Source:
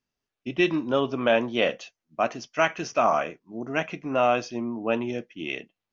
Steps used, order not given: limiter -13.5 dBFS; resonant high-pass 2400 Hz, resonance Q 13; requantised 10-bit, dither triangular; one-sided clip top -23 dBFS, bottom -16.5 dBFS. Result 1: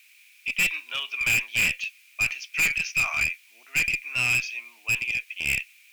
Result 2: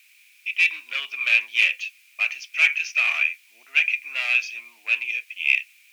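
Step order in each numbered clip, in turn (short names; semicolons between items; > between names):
requantised > resonant high-pass > one-sided clip > limiter; requantised > one-sided clip > limiter > resonant high-pass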